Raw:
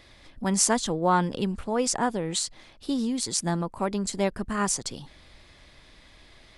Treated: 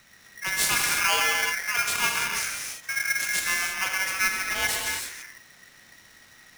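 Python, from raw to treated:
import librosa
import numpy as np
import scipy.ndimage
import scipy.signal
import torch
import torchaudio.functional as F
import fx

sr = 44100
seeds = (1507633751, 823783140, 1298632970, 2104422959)

y = fx.rev_gated(x, sr, seeds[0], gate_ms=360, shape='flat', drr_db=-1.5)
y = y * np.sign(np.sin(2.0 * np.pi * 1900.0 * np.arange(len(y)) / sr))
y = y * librosa.db_to_amplitude(-3.5)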